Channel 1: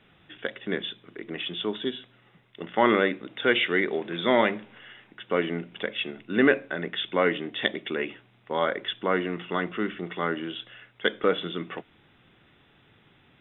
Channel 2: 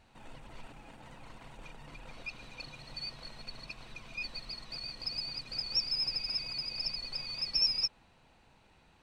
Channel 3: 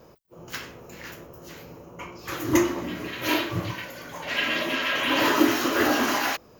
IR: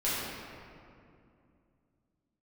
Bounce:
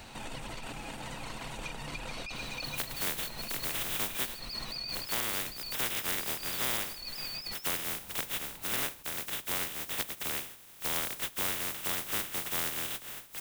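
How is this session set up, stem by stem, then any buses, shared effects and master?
-8.5 dB, 2.35 s, bus A, no send, spectral contrast lowered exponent 0.15; AGC
+2.5 dB, 0.00 s, bus A, no send, negative-ratio compressor -46 dBFS, ratio -1
off
bus A: 0.0 dB, high shelf 8800 Hz +8 dB; compressor 2:1, threshold -36 dBFS, peak gain reduction 10.5 dB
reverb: off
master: three-band squash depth 40%

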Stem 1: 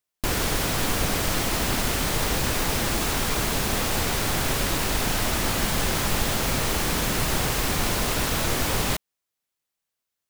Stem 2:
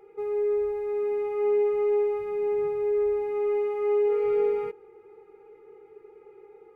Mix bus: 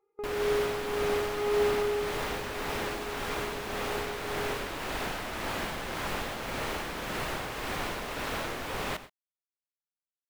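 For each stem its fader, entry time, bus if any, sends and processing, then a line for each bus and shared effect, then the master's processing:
-4.5 dB, 0.00 s, no send, echo send -12 dB, tone controls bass -9 dB, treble -12 dB
1.95 s -3 dB -> 2.27 s -15 dB, 0.00 s, no send, no echo send, bell 1100 Hz +14 dB 0.38 oct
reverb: off
echo: echo 0.129 s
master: gate with hold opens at -30 dBFS; tremolo 1.8 Hz, depth 37%

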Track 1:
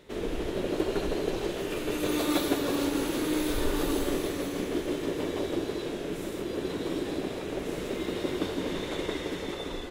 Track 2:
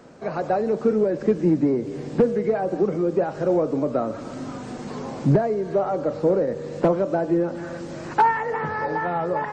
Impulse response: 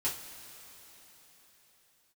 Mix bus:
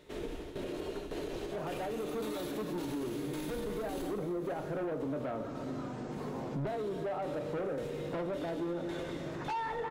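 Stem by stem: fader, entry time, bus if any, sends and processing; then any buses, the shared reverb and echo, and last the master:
4 s -5.5 dB -> 4.21 s -18 dB -> 6.29 s -18 dB -> 6.59 s -10 dB, 0.00 s, send -9.5 dB, tremolo saw down 1.8 Hz, depth 80%
-7.5 dB, 1.30 s, send -12.5 dB, high shelf 3600 Hz -10 dB; soft clip -21.5 dBFS, distortion -9 dB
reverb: on, pre-delay 3 ms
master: limiter -30 dBFS, peak gain reduction 11.5 dB

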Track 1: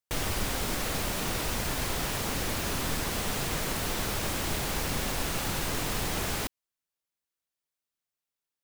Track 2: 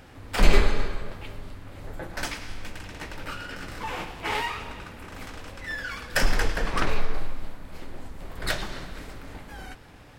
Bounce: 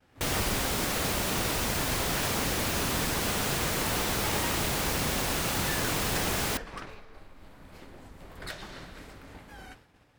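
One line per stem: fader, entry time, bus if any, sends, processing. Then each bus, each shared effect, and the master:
+2.5 dB, 0.10 s, no send, dry
-5.0 dB, 0.00 s, no send, expander -42 dBFS; compressor 10:1, threshold -28 dBFS, peak gain reduction 20.5 dB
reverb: off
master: HPF 53 Hz 6 dB/oct

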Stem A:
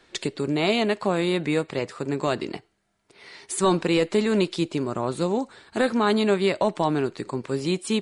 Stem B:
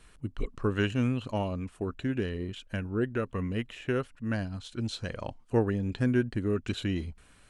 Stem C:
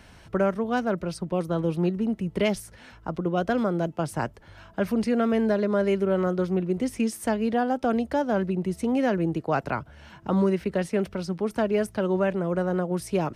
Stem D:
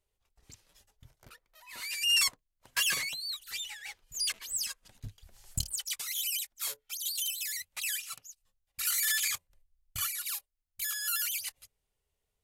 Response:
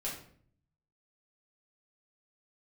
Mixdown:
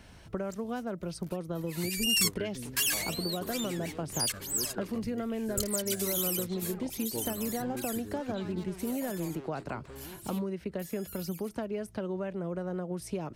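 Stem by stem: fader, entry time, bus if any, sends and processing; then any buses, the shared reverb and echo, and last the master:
-9.0 dB, 2.40 s, no send, limiter -20 dBFS, peak gain reduction 9.5 dB; soft clip -35.5 dBFS, distortion -6 dB
-16.5 dB, 1.60 s, no send, spectral gate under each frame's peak -20 dB strong; harmonic-percussive split percussive +6 dB
-1.5 dB, 0.00 s, no send, compressor 6:1, threshold -29 dBFS, peak gain reduction 11 dB; bell 1400 Hz -3.5 dB 2.2 oct
6.13 s -3.5 dB -> 6.6 s -11 dB -> 7.89 s -11 dB -> 8.1 s -23 dB, 0.00 s, no send, high shelf 7400 Hz +11 dB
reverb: off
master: soft clip -14.5 dBFS, distortion -30 dB

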